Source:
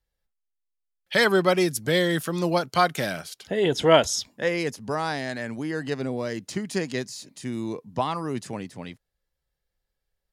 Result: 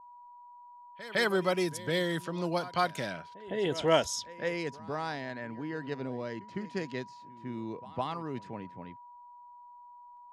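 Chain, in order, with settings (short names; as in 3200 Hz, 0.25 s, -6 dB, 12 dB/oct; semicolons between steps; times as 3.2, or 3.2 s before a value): whine 970 Hz -40 dBFS; low-pass opened by the level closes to 1000 Hz, open at -18.5 dBFS; pre-echo 0.158 s -17 dB; gain -8 dB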